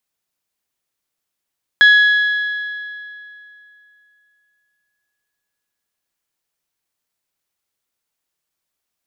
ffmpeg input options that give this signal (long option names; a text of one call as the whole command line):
ffmpeg -f lavfi -i "aevalsrc='0.562*pow(10,-3*t/2.84)*sin(2*PI*1680*t)+0.178*pow(10,-3*t/2.307)*sin(2*PI*3360*t)+0.0562*pow(10,-3*t/2.184)*sin(2*PI*4032*t)+0.0178*pow(10,-3*t/2.043)*sin(2*PI*5040*t)+0.00562*pow(10,-3*t/1.874)*sin(2*PI*6720*t)':duration=5.81:sample_rate=44100" out.wav